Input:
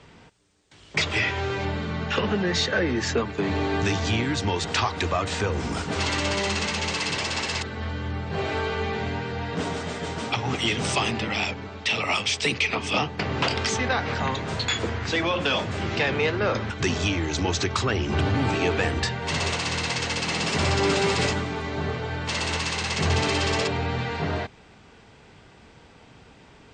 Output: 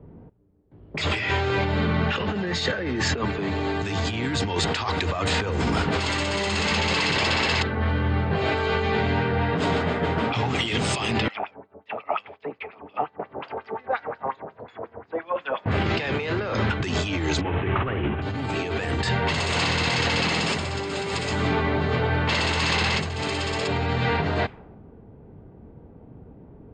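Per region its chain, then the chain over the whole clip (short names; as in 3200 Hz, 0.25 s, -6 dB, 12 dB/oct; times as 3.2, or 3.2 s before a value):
11.28–15.66 median filter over 3 samples + high shelf 3400 Hz -9.5 dB + LFO band-pass sine 5.6 Hz 570–7200 Hz
17.41–18.22 CVSD 16 kbps + flutter echo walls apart 9.5 m, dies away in 0.38 s
whole clip: low-pass opened by the level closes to 370 Hz, open at -21 dBFS; notch 5800 Hz, Q 6; negative-ratio compressor -29 dBFS, ratio -1; gain +4.5 dB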